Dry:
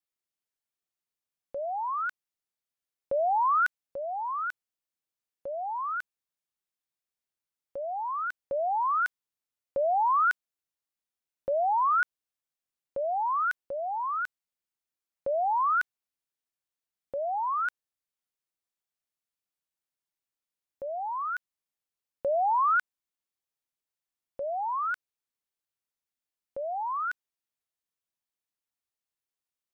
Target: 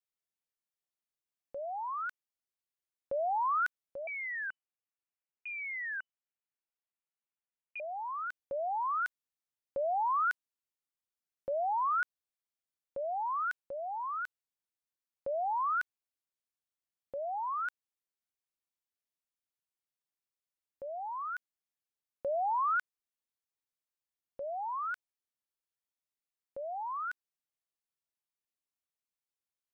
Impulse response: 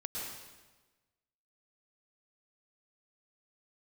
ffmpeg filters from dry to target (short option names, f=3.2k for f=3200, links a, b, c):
-filter_complex "[0:a]asettb=1/sr,asplit=3[a][b][c];[a]atrim=end=4.074[d];[b]atrim=start=4.07:end=7.8,asetpts=PTS-STARTPTS,afade=t=in:d=0.004:c=qsin,afade=t=out:st=3.726:d=0.004:c=qsin,lowpass=f=2.6k:t=q:w=0.5098,lowpass=f=2.6k:t=q:w=0.6013,lowpass=f=2.6k:t=q:w=0.9,lowpass=f=2.6k:t=q:w=2.563,afreqshift=-3000[e];[c]atrim=start=7.796[f];[d][e]acrossfade=d=0.004:c1=hsin:c2=qsin[g];[g][f]acrossfade=d=0.004:c1=qsin:c2=hsin,volume=-6dB"